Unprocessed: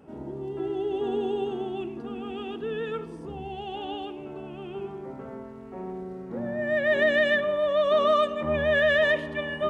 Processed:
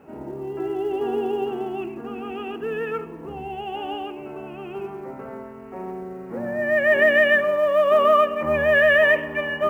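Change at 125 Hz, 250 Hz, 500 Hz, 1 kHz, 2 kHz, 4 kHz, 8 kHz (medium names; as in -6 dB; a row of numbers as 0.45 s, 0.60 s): 0.0 dB, +2.0 dB, +4.5 dB, +6.0 dB, +6.5 dB, +0.5 dB, no reading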